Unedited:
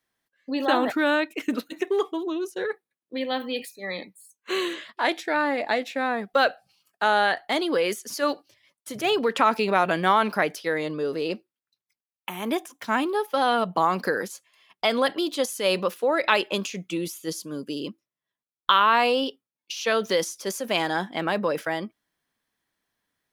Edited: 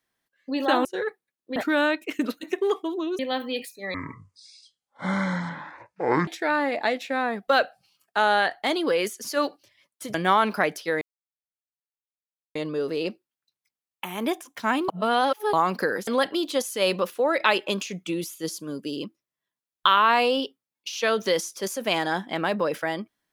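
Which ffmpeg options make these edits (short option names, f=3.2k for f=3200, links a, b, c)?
-filter_complex "[0:a]asplit=11[a][b][c][d][e][f][g][h][i][j][k];[a]atrim=end=0.852[l];[b]atrim=start=2.478:end=3.192[m];[c]atrim=start=0.848:end=2.482[n];[d]atrim=start=3.188:end=3.944[o];[e]atrim=start=3.94:end=5.13,asetpts=PTS-STARTPTS,asetrate=22491,aresample=44100[p];[f]atrim=start=5.126:end=9.002[q];[g]atrim=start=9.928:end=10.8,asetpts=PTS-STARTPTS,afade=t=out:st=0.868:d=0.004:c=hsin,apad=pad_dur=1.54[r];[h]atrim=start=10.8:end=13.132,asetpts=PTS-STARTPTS,afade=t=in:d=0.004:c=hsin[s];[i]atrim=start=13.128:end=13.782,asetpts=PTS-STARTPTS,areverse[t];[j]atrim=start=13.778:end=14.322[u];[k]atrim=start=14.908[v];[l][m]acrossfade=d=0.004:c1=hsin:c2=hsin[w];[w][n]acrossfade=d=0.004:c1=hsin:c2=hsin[x];[x][o]acrossfade=d=0.004:c1=hsin:c2=hsin[y];[y][p]acrossfade=d=0.004:c1=hsin:c2=hsin[z];[z][q]acrossfade=d=0.004:c1=hsin:c2=hsin[aa];[r][s]concat=n=2:v=0:a=1[ab];[aa][ab]acrossfade=d=0.004:c1=hsin:c2=hsin[ac];[ac][t]acrossfade=d=0.004:c1=hsin:c2=hsin[ad];[ad][u]acrossfade=d=0.004:c1=hsin:c2=hsin[ae];[ae][v]acrossfade=d=0.004:c1=hsin:c2=hsin"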